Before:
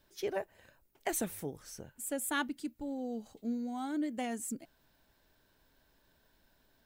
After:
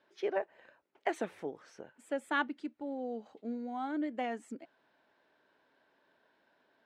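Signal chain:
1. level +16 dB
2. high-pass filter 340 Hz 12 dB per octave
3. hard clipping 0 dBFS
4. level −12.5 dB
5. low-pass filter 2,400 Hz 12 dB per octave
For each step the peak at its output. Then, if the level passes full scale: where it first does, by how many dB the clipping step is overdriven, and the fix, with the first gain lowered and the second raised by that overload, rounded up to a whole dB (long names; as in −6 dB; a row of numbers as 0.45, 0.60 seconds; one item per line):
−3.0, −4.5, −4.5, −17.0, −18.5 dBFS
no step passes full scale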